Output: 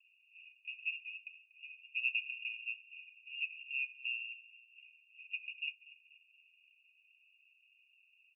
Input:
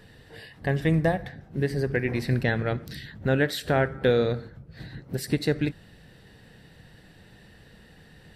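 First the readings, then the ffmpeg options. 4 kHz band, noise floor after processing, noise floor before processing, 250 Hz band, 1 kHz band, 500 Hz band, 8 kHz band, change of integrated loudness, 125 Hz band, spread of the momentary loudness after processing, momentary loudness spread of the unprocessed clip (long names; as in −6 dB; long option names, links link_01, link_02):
−7.5 dB, −71 dBFS, −53 dBFS, below −40 dB, below −40 dB, below −40 dB, below −35 dB, −13.5 dB, below −40 dB, 21 LU, 18 LU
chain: -filter_complex "[0:a]asuperpass=centerf=2300:order=20:qfactor=6.4,asplit=2[link_01][link_02];[link_02]aecho=0:1:240|480|720|960|1200:0.119|0.0654|0.036|0.0198|0.0109[link_03];[link_01][link_03]amix=inputs=2:normalize=0,afreqshift=340,volume=7dB" -ar 22050 -c:a aac -b:a 96k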